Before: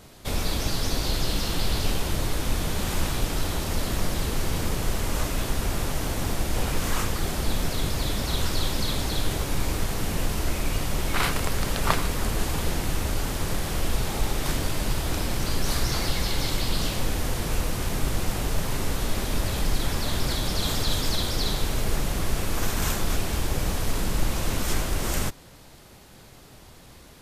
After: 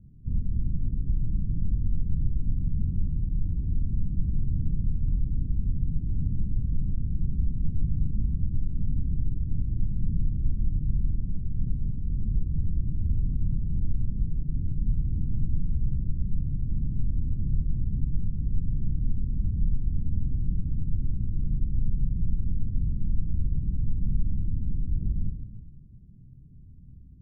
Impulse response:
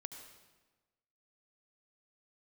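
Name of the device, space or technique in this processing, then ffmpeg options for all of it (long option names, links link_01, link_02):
club heard from the street: -filter_complex "[0:a]alimiter=limit=-16dB:level=0:latency=1:release=278,lowpass=frequency=190:width=0.5412,lowpass=frequency=190:width=1.3066[link_01];[1:a]atrim=start_sample=2205[link_02];[link_01][link_02]afir=irnorm=-1:irlink=0,volume=7dB"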